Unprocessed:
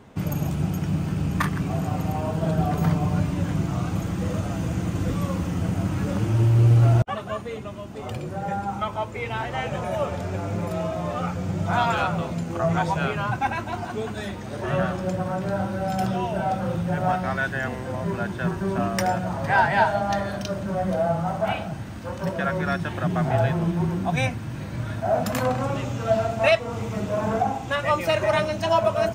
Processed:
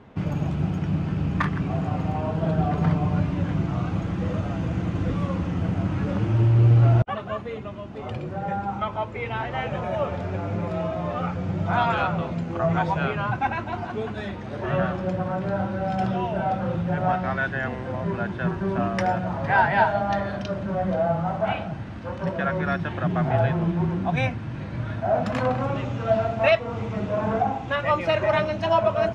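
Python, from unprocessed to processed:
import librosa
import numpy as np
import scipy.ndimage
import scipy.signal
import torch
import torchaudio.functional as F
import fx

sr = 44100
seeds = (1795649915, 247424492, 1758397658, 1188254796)

y = scipy.signal.sosfilt(scipy.signal.butter(2, 3400.0, 'lowpass', fs=sr, output='sos'), x)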